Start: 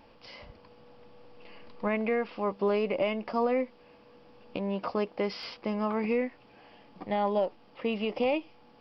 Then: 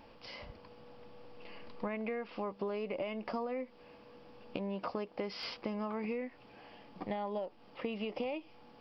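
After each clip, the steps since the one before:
downward compressor 10 to 1, threshold −34 dBFS, peak gain reduction 12 dB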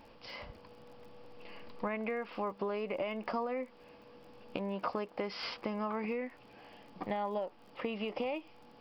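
dynamic equaliser 1,300 Hz, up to +5 dB, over −53 dBFS, Q 0.74
surface crackle 33 per second −52 dBFS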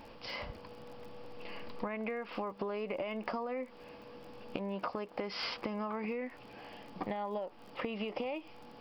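downward compressor, threshold −39 dBFS, peak gain reduction 9 dB
level +5 dB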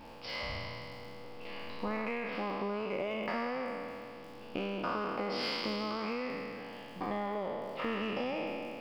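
peak hold with a decay on every bin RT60 2.54 s
in parallel at −11 dB: hard clipping −32.5 dBFS, distortion −10 dB
on the sum: level −3.5 dB

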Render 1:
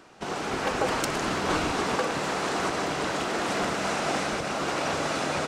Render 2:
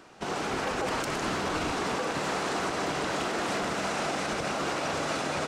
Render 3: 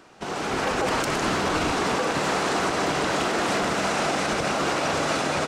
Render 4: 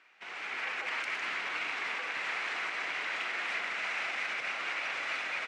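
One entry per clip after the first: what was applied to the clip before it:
brickwall limiter −21 dBFS, peak gain reduction 8 dB
automatic gain control gain up to 5 dB; level +1 dB
resonant band-pass 2,200 Hz, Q 3.3

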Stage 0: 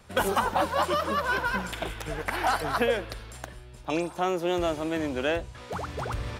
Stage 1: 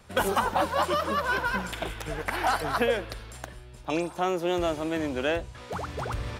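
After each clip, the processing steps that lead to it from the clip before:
no processing that can be heard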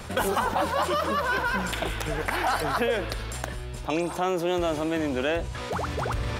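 envelope flattener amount 50%
level −1.5 dB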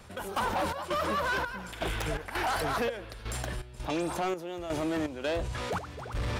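gate pattern "..xx.xxx" 83 BPM −12 dB
soft clipping −25 dBFS, distortion −11 dB

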